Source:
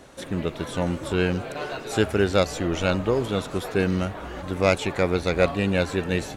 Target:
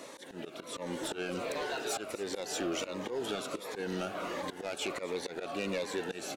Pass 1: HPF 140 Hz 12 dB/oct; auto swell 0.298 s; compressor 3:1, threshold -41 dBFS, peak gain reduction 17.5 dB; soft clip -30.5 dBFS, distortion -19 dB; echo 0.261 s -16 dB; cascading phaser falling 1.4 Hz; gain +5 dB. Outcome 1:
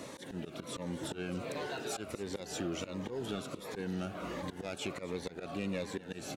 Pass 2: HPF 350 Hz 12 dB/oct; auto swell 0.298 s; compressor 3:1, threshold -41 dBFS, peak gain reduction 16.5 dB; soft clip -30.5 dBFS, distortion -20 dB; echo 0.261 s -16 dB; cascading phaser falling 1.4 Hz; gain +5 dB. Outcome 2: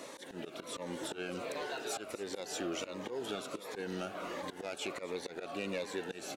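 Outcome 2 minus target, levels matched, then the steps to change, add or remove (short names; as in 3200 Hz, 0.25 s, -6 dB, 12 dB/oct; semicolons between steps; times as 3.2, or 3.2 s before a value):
compressor: peak gain reduction +4.5 dB
change: compressor 3:1, threshold -34 dBFS, peak gain reduction 12 dB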